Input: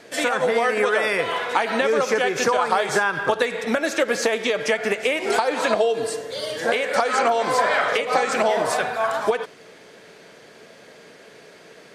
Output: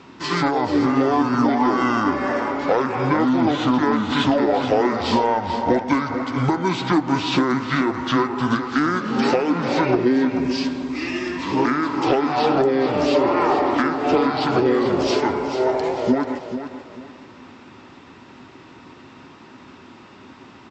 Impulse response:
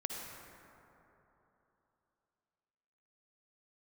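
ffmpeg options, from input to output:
-af "acontrast=83,aecho=1:1:253|506|759:0.316|0.0949|0.0285,asetrate=25442,aresample=44100,volume=-5dB"

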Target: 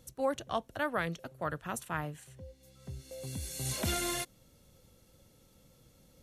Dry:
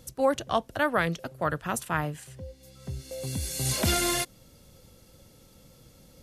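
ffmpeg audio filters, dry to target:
ffmpeg -i in.wav -af "bandreject=frequency=4900:width=12,volume=-7.5dB" out.wav

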